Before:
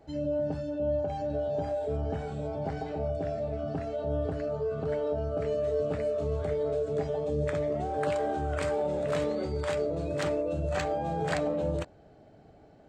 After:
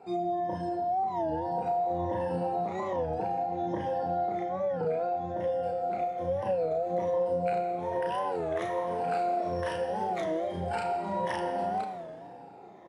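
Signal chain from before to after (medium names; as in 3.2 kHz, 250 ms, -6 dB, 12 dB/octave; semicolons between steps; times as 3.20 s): drifting ripple filter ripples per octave 1.2, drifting -1.2 Hz, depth 14 dB; pitch shift +3 st; high-pass 110 Hz 12 dB/octave; bass shelf 180 Hz -10.5 dB; doubling 34 ms -3 dB; compression, threshold -32 dBFS, peak gain reduction 13.5 dB; treble shelf 2.7 kHz -10 dB; Schroeder reverb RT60 2 s, combs from 28 ms, DRR 5.5 dB; warped record 33 1/3 rpm, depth 160 cents; trim +4 dB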